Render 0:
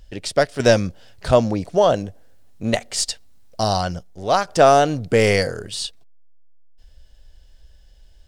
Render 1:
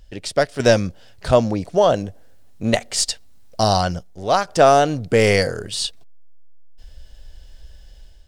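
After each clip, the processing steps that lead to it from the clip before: level rider gain up to 8 dB; trim -1 dB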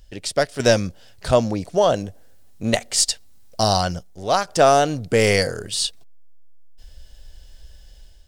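treble shelf 4.8 kHz +6.5 dB; trim -2 dB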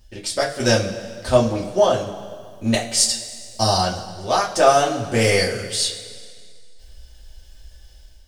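two-slope reverb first 0.21 s, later 2 s, from -19 dB, DRR -4.5 dB; trim -5 dB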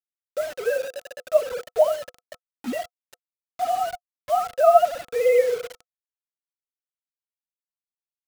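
formants replaced by sine waves; bit crusher 5-bit; small resonant body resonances 500/710/1300 Hz, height 10 dB, ringing for 55 ms; trim -8 dB

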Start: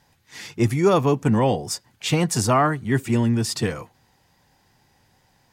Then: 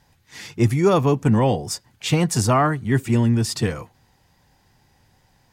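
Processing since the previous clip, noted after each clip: bass shelf 100 Hz +8 dB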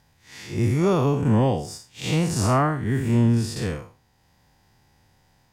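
spectral blur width 146 ms; transient shaper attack +2 dB, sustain -3 dB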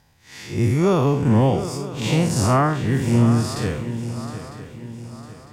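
shuffle delay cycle 953 ms, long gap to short 3:1, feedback 41%, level -12 dB; trim +2.5 dB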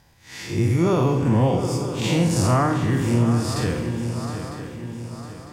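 on a send at -7 dB: reverberation RT60 1.5 s, pre-delay 3 ms; on the sum: compression 1.5:1, threshold -25 dBFS, peak gain reduction 5.5 dB; trim +2 dB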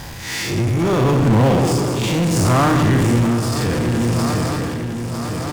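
tremolo 0.71 Hz, depth 63%; delay 166 ms -10.5 dB; power-law waveshaper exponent 0.5; trim +1 dB

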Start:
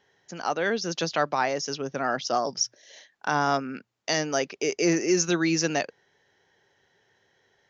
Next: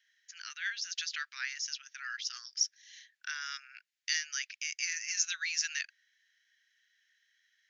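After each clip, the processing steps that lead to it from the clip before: steep high-pass 1.6 kHz 48 dB/octave; trim -3.5 dB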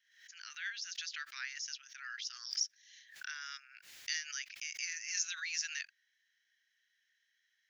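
swell ahead of each attack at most 94 dB/s; trim -5.5 dB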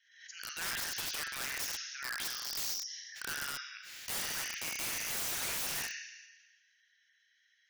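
Schroeder reverb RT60 1.3 s, combs from 31 ms, DRR 3.5 dB; spectral gate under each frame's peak -25 dB strong; integer overflow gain 36.5 dB; trim +5.5 dB

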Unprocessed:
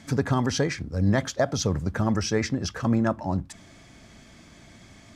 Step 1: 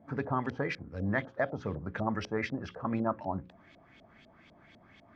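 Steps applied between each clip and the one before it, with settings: LFO low-pass saw up 4 Hz 550–3700 Hz; bass shelf 88 Hz -9.5 dB; hum notches 60/120/180/240/300/360/420/480/540 Hz; trim -8 dB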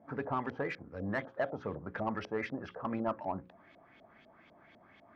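overdrive pedal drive 14 dB, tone 1 kHz, clips at -16 dBFS; trim -4 dB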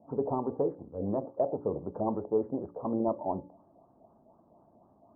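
steep low-pass 1 kHz 48 dB/octave; de-hum 288.9 Hz, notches 5; dynamic bell 400 Hz, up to +8 dB, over -50 dBFS, Q 1.1; trim +1.5 dB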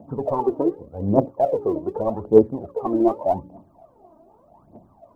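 phaser 0.84 Hz, delay 3.3 ms, feedback 76%; trim +6.5 dB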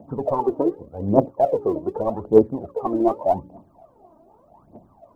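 harmonic-percussive split percussive +4 dB; trim -2 dB

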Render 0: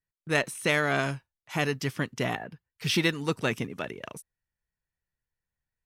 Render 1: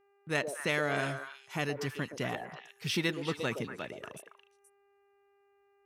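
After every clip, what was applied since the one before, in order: high-pass 49 Hz; repeats whose band climbs or falls 119 ms, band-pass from 490 Hz, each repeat 1.4 oct, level -3.5 dB; mains buzz 400 Hz, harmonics 7, -63 dBFS -7 dB/octave; trim -6 dB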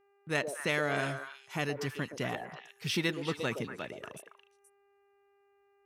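no audible change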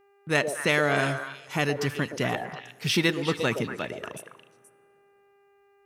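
plate-style reverb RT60 2.6 s, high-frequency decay 0.65×, DRR 20 dB; trim +7.5 dB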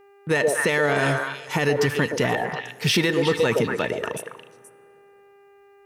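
in parallel at -8 dB: saturation -25 dBFS, distortion -8 dB; on the sum: small resonant body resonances 470/900/1800 Hz, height 8 dB; peak limiter -16 dBFS, peak gain reduction 9.5 dB; trim +4.5 dB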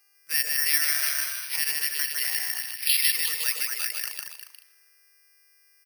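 resonant high-pass 2.2 kHz, resonance Q 1.5; delay 152 ms -3.5 dB; careless resampling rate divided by 6×, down filtered, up zero stuff; trim -8 dB

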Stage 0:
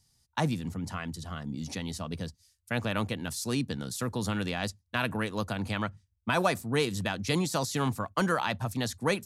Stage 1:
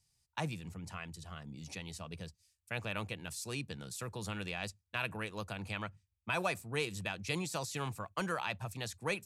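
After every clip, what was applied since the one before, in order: graphic EQ with 31 bands 250 Hz -11 dB, 2.5 kHz +8 dB, 8 kHz +4 dB; trim -8.5 dB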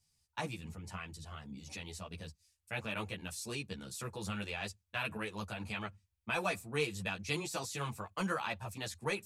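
three-phase chorus; trim +3 dB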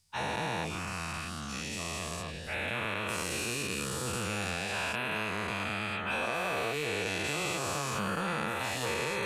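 every event in the spectrogram widened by 480 ms; compression, threshold -29 dBFS, peak gain reduction 7 dB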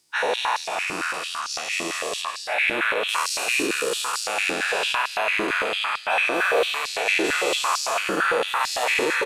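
delay 221 ms -9 dB; in parallel at -6 dB: saturation -25 dBFS, distortion -19 dB; on the sum: step-sequenced high-pass 8.9 Hz 320–4800 Hz; trim +3.5 dB

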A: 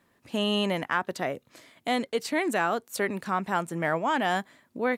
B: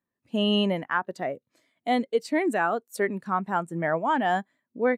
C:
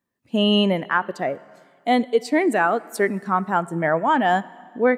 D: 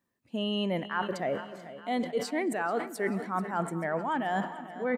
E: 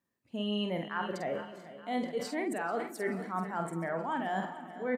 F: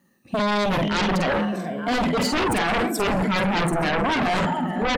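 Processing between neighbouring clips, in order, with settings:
treble shelf 5.9 kHz +5 dB; spectral contrast expander 1.5:1
plate-style reverb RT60 2 s, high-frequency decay 0.9×, DRR 19 dB; trim +5.5 dB
reverse; compression 6:1, threshold -28 dBFS, peak gain reduction 14.5 dB; reverse; feedback delay 436 ms, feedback 56%, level -15 dB; decay stretcher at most 130 dB/s
doubling 48 ms -6 dB; trim -4.5 dB
drifting ripple filter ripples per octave 1.7, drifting -0.85 Hz, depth 11 dB; peaking EQ 190 Hz +8.5 dB 1 oct; sine folder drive 14 dB, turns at -17 dBFS; trim -1.5 dB

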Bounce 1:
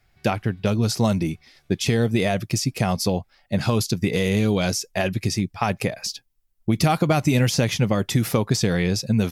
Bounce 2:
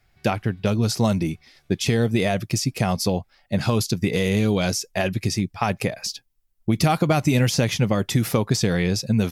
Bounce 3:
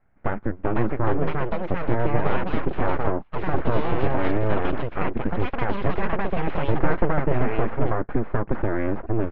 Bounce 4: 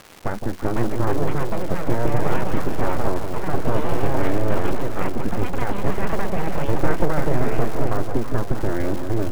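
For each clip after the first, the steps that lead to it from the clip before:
no audible change
full-wave rectifier; inverse Chebyshev low-pass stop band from 7 kHz, stop band 70 dB; ever faster or slower copies 556 ms, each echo +4 st, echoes 2
crackle 370 per s -25 dBFS; echo whose repeats swap between lows and highs 166 ms, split 930 Hz, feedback 71%, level -6.5 dB; tape noise reduction on one side only decoder only

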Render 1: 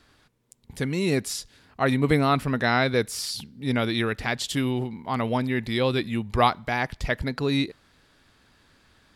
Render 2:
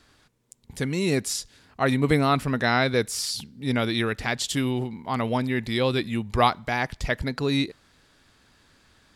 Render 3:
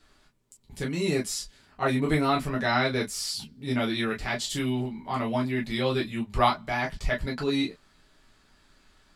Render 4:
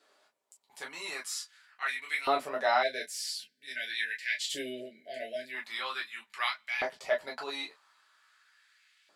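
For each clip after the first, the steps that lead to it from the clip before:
peaking EQ 7.1 kHz +4 dB 1 oct
reverberation, pre-delay 5 ms, DRR -3 dB; trim -7.5 dB
LFO high-pass saw up 0.44 Hz 480–2400 Hz; spectral selection erased 2.83–5.54 s, 690–1500 Hz; trim -5 dB

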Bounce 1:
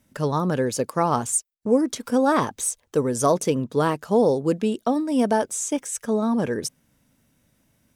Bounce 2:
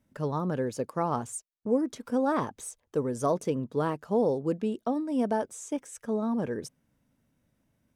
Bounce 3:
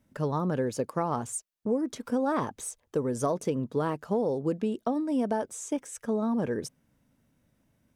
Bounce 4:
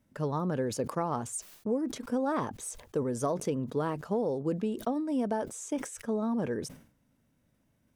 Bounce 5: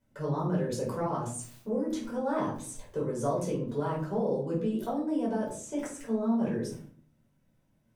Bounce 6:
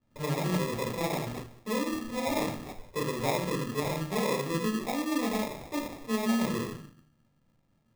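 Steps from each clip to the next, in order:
treble shelf 2.3 kHz -9 dB; trim -6.5 dB
compression 4:1, threshold -27 dBFS, peak gain reduction 6.5 dB; trim +3 dB
decay stretcher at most 110 dB/s; trim -2.5 dB
simulated room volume 400 m³, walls furnished, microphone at 4.9 m; trim -9 dB
sample-rate reducer 1.5 kHz, jitter 0%

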